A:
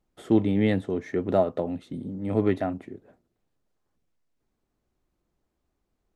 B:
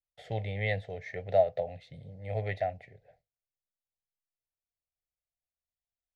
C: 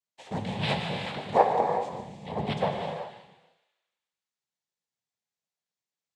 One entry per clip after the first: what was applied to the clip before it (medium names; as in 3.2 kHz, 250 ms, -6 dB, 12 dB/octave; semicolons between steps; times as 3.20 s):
gate with hold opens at -51 dBFS; FFT filter 140 Hz 0 dB, 230 Hz -23 dB, 340 Hz -26 dB, 490 Hz 0 dB, 740 Hz +4 dB, 1.1 kHz -23 dB, 2 kHz +7 dB, 3 kHz -1 dB, 4.5 kHz +3 dB, 8.7 kHz -12 dB; trim -3.5 dB
thinning echo 149 ms, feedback 56%, high-pass 890 Hz, level -10 dB; noise-vocoded speech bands 6; gated-style reverb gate 420 ms flat, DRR 2.5 dB; trim +2.5 dB